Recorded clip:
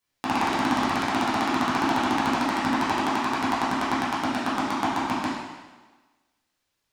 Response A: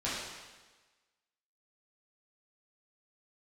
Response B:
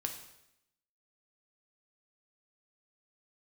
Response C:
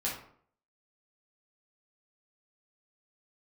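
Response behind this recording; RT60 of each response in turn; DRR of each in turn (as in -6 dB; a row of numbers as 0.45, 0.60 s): A; 1.3, 0.80, 0.60 s; -9.5, 3.5, -6.0 dB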